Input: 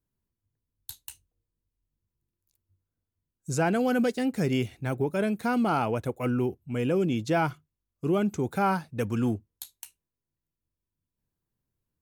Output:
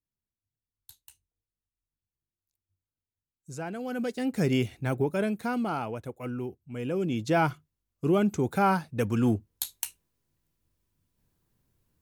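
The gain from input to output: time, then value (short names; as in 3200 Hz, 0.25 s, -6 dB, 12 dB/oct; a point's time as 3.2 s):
3.78 s -11 dB
4.42 s +1 dB
4.99 s +1 dB
5.98 s -7.5 dB
6.7 s -7.5 dB
7.41 s +1.5 dB
9.22 s +1.5 dB
9.71 s +10.5 dB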